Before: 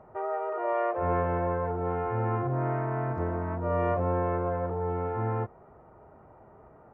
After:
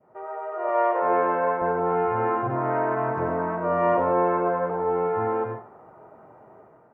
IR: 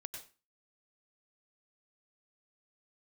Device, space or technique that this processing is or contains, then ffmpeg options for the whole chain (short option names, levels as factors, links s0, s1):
far laptop microphone: -filter_complex "[1:a]atrim=start_sample=2205[s0];[0:a][s0]afir=irnorm=-1:irlink=0,highpass=170,dynaudnorm=f=470:g=3:m=2.51,asettb=1/sr,asplit=3[s1][s2][s3];[s1]atrim=end=0.694[s4];[s2]atrim=start=0.69:end=1.62,asetpts=PTS-STARTPTS,afade=t=in:d=0.004:c=qsin,afade=t=out:st=0.926:d=0.004:c=qsin,highpass=280[s5];[s3]atrim=start=1.616[s6];[s4][s5]acrossfade=d=0.004:c1=hsin:c2=qsin[s7];[s7][s6]acrossfade=d=0.004:c1=qsin:c2=hsin,adynamicequalizer=threshold=0.0158:dfrequency=990:dqfactor=1:tfrequency=990:tqfactor=1:attack=5:release=100:ratio=0.375:range=2.5:mode=boostabove:tftype=bell"